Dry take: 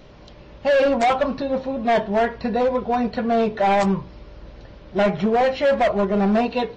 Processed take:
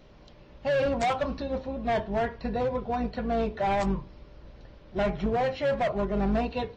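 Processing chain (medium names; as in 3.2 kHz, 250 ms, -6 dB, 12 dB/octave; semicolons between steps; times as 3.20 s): octave divider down 2 oct, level -3 dB; 0.96–1.58 s: treble shelf 4 kHz +5.5 dB; trim -8.5 dB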